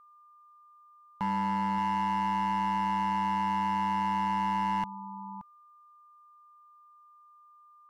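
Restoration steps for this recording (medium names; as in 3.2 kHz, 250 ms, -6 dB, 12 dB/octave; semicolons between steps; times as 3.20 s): clip repair -25.5 dBFS; band-stop 1.2 kHz, Q 30; inverse comb 574 ms -13.5 dB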